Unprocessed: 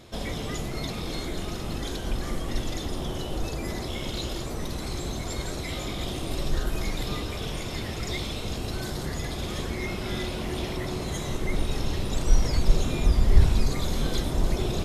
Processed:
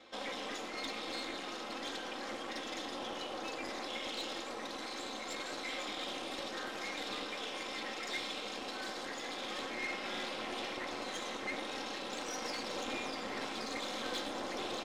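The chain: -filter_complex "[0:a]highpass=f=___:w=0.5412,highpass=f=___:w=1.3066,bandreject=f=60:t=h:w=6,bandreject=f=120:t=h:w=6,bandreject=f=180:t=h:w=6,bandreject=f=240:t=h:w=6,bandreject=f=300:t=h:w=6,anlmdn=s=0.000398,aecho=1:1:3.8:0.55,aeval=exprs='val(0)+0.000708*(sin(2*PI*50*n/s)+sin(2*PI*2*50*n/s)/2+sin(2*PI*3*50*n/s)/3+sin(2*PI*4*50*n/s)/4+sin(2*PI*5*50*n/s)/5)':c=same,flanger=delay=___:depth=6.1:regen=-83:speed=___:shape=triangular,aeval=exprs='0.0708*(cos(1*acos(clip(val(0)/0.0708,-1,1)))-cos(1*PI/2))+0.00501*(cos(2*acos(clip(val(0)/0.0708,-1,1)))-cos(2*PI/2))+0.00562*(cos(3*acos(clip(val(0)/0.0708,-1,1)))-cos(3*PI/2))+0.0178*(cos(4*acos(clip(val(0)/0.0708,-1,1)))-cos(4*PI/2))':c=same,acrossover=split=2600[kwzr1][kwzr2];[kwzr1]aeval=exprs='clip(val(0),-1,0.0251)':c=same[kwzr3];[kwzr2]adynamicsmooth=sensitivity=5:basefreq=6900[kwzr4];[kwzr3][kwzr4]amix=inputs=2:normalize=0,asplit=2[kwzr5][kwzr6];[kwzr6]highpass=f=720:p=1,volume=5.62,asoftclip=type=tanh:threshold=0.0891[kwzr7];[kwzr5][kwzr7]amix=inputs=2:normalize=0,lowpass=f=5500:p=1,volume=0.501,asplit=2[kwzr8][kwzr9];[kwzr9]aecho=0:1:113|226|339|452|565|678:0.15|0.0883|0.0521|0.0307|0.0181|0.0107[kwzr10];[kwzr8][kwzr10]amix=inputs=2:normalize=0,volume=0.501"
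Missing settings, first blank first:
230, 230, 8.5, 0.83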